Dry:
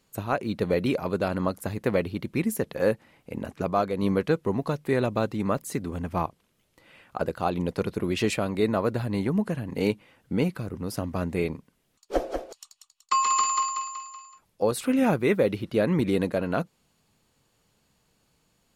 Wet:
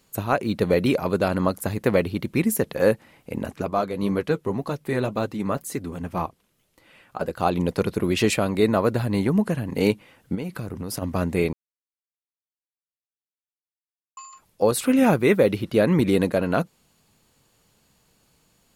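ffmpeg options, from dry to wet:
-filter_complex "[0:a]asplit=3[s0][s1][s2];[s0]afade=t=out:st=3.6:d=0.02[s3];[s1]flanger=delay=2.3:depth=5.3:regen=-55:speed=1.9:shape=triangular,afade=t=in:st=3.6:d=0.02,afade=t=out:st=7.37:d=0.02[s4];[s2]afade=t=in:st=7.37:d=0.02[s5];[s3][s4][s5]amix=inputs=3:normalize=0,asplit=3[s6][s7][s8];[s6]afade=t=out:st=10.34:d=0.02[s9];[s7]acompressor=threshold=0.0316:ratio=12:attack=3.2:release=140:knee=1:detection=peak,afade=t=in:st=10.34:d=0.02,afade=t=out:st=11.01:d=0.02[s10];[s8]afade=t=in:st=11.01:d=0.02[s11];[s9][s10][s11]amix=inputs=3:normalize=0,asplit=3[s12][s13][s14];[s12]atrim=end=11.53,asetpts=PTS-STARTPTS,afade=t=out:st=11.526:d=0.004:c=hsin[s15];[s13]atrim=start=11.53:end=14.17,asetpts=PTS-STARTPTS,volume=0[s16];[s14]atrim=start=14.17,asetpts=PTS-STARTPTS,afade=t=in:d=0.004:c=hsin[s17];[s15][s16][s17]concat=n=3:v=0:a=1,highshelf=f=9100:g=5.5,volume=1.68"

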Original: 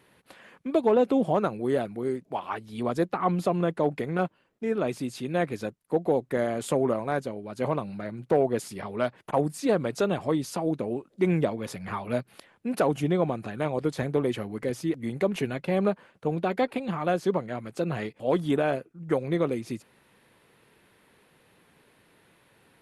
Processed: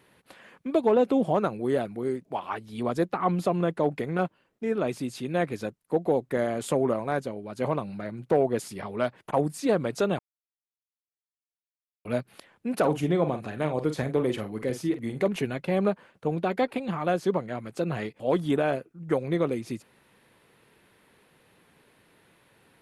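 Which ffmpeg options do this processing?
-filter_complex "[0:a]asettb=1/sr,asplit=3[s0][s1][s2];[s0]atrim=end=12.794[s3];[s1]atrim=start=12.79:end=15.28,asetpts=PTS-STARTPTS,afade=t=in:d=0.004:c=qsin,afade=t=out:st=2.486:d=0.004:c=qsin,asplit=2[s4][s5];[s5]adelay=46,volume=0.316[s6];[s4][s6]amix=inputs=2:normalize=0,atrim=end_sample=109809[s7];[s2]atrim=start=15.276[s8];[s3][s7]acrossfade=d=0.004:c1=hsin:c2=qsin[s9];[s9][s8]acrossfade=d=0.004:c1=qsin:c2=hsin,asplit=3[s10][s11][s12];[s10]atrim=end=10.19,asetpts=PTS-STARTPTS,afade=t=out:st=10.186:d=0.004:c=hsin[s13];[s11]atrim=start=10.19:end=12.05,asetpts=PTS-STARTPTS,volume=0[s14];[s12]atrim=start=12.05,asetpts=PTS-STARTPTS,afade=t=in:d=0.004:c=hsin[s15];[s13][s14][s15]concat=n=3:v=0:a=1"

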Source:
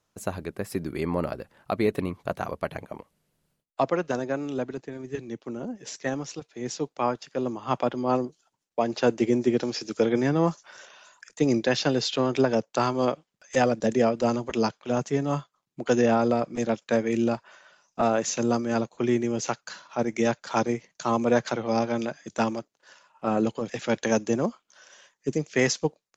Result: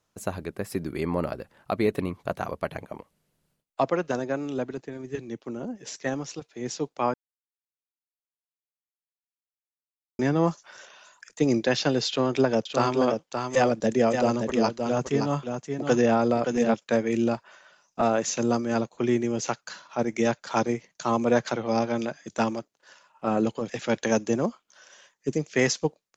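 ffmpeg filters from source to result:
-filter_complex "[0:a]asettb=1/sr,asplit=3[s0][s1][s2];[s0]atrim=end=12.084[s3];[s1]atrim=start=12.08:end=16.74,asetpts=PTS-STARTPTS,afade=t=in:d=0.004:c=qsin,afade=t=out:st=4.656:d=0.004:c=qsin,aecho=1:1:572:0.501,atrim=end_sample=205506[s4];[s2]atrim=start=16.736[s5];[s3][s4]acrossfade=d=0.004:c1=hsin:c2=qsin[s6];[s6][s5]acrossfade=d=0.004:c1=qsin:c2=hsin,asplit=3[s7][s8][s9];[s7]atrim=end=7.14,asetpts=PTS-STARTPTS,afade=t=out:st=7.136:d=0.004:c=hsin[s10];[s8]atrim=start=7.14:end=10.19,asetpts=PTS-STARTPTS,volume=0[s11];[s9]atrim=start=10.19,asetpts=PTS-STARTPTS,afade=t=in:d=0.004:c=hsin[s12];[s10][s11][s12]concat=n=3:v=0:a=1"

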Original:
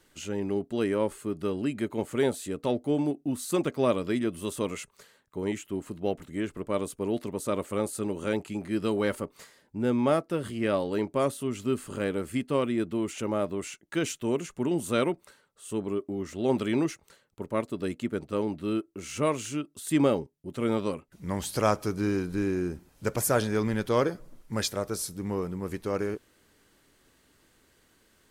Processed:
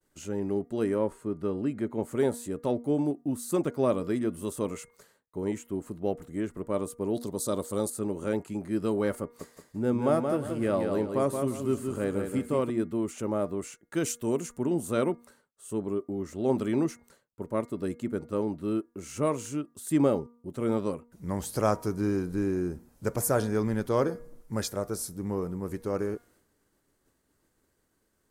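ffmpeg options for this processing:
-filter_complex "[0:a]asettb=1/sr,asplit=3[s0][s1][s2];[s0]atrim=end=0.994[s3];[s1]atrim=start=0.99:end=2.03,asetpts=PTS-STARTPTS,afade=t=in:d=0.004:c=qsin,afade=t=out:st=1.036:d=0.004:c=qsin,lowpass=f=3500:p=1[s4];[s2]atrim=start=2.026[s5];[s3][s4]acrossfade=d=0.004:c1=hsin:c2=qsin[s6];[s6][s5]acrossfade=d=0.004:c1=qsin:c2=hsin,asettb=1/sr,asplit=3[s7][s8][s9];[s7]atrim=end=7.154[s10];[s8]atrim=start=7.15:end=7.9,asetpts=PTS-STARTPTS,afade=t=in:d=0.004:c=qsin,afade=t=out:st=0.746:d=0.004:c=qsin,highshelf=f=3100:t=q:w=3:g=7[s11];[s9]atrim=start=7.896[s12];[s10][s11]acrossfade=d=0.004:c1=hsin:c2=qsin[s13];[s13][s12]acrossfade=d=0.004:c1=qsin:c2=hsin,asettb=1/sr,asplit=3[s14][s15][s16];[s14]atrim=end=9.234[s17];[s15]atrim=start=9.23:end=12.7,asetpts=PTS-STARTPTS,afade=t=in:d=0.004:c=qsin,afade=t=out:st=3.466:d=0.004:c=qsin,aecho=1:1:175|350|525|700:0.531|0.165|0.051|0.0158,atrim=end_sample=153027[s18];[s16]atrim=start=12.696[s19];[s17][s18]acrossfade=d=0.004:c1=hsin:c2=qsin[s20];[s20][s19]acrossfade=d=0.004:c1=qsin:c2=hsin,asettb=1/sr,asplit=3[s21][s22][s23];[s21]atrim=end=13.964[s24];[s22]atrim=start=13.96:end=14.58,asetpts=PTS-STARTPTS,afade=t=in:d=0.004:c=qsin,afade=t=out:st=0.616:d=0.004:c=qsin,highshelf=f=4000:g=7.5[s25];[s23]atrim=start=14.576[s26];[s24][s25]acrossfade=d=0.004:c1=hsin:c2=qsin[s27];[s27][s26]acrossfade=d=0.004:c1=qsin:c2=hsin,bandreject=f=237.8:t=h:w=4,bandreject=f=475.6:t=h:w=4,bandreject=f=713.4:t=h:w=4,bandreject=f=951.2:t=h:w=4,bandreject=f=1189:t=h:w=4,bandreject=f=1426.8:t=h:w=4,bandreject=f=1664.6:t=h:w=4,bandreject=f=1902.4:t=h:w=4,bandreject=f=2140.2:t=h:w=4,agate=range=0.0224:threshold=0.00141:ratio=3:detection=peak,equalizer=f=3000:t=o:w=1.6:g=-9.5"

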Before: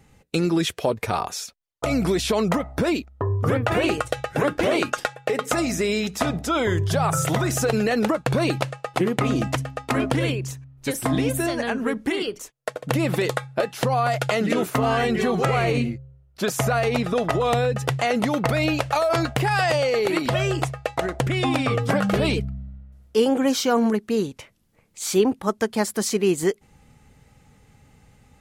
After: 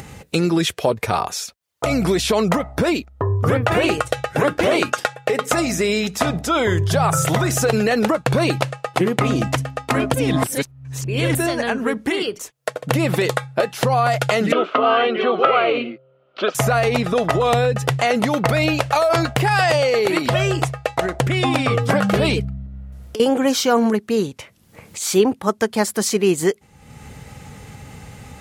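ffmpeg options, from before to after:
-filter_complex "[0:a]asettb=1/sr,asplit=3[s0][s1][s2];[s0]atrim=end=14.524[s3];[s1]atrim=start=14.52:end=16.55,asetpts=PTS-STARTPTS,afade=t=in:d=0.004:c=qsin,afade=t=out:st=2.026:d=0.004:c=qsin,highpass=f=270:w=0.5412,highpass=f=270:w=1.3066,equalizer=f=590:t=q:w=4:g=5,equalizer=f=880:t=q:w=4:g=-4,equalizer=f=1300:t=q:w=4:g=9,equalizer=f=1800:t=q:w=4:g=-7,equalizer=f=3100:t=q:w=4:g=6,lowpass=f=3400:w=0.5412,lowpass=f=3400:w=1.3066[s4];[s2]atrim=start=16.546[s5];[s3][s4]acrossfade=d=0.004:c1=hsin:c2=qsin[s6];[s6][s5]acrossfade=d=0.004:c1=qsin:c2=hsin,asettb=1/sr,asplit=3[s7][s8][s9];[s7]atrim=end=22.664[s10];[s8]atrim=start=22.66:end=23.2,asetpts=PTS-STARTPTS,afade=t=in:d=0.004:c=qsin,afade=t=out:st=0.536:d=0.004:c=qsin,acompressor=threshold=0.0178:ratio=6:attack=3.2:release=140:knee=1:detection=peak[s11];[s9]atrim=start=23.196[s12];[s10][s11]acrossfade=d=0.004:c1=hsin:c2=qsin[s13];[s13][s12]acrossfade=d=0.004:c1=qsin:c2=hsin,asplit=3[s14][s15][s16];[s14]atrim=end=10.142[s17];[s15]atrim=start=10.138:end=11.352,asetpts=PTS-STARTPTS,areverse[s18];[s16]atrim=start=11.348[s19];[s17][s18]acrossfade=d=0.004:c1=hsin:c2=hsin[s20];[s20][s19]acrossfade=d=0.004:c1=hsin:c2=hsin,highpass=61,equalizer=f=270:t=o:w=0.84:g=-2.5,acompressor=mode=upward:threshold=0.0316:ratio=2.5,volume=1.68"

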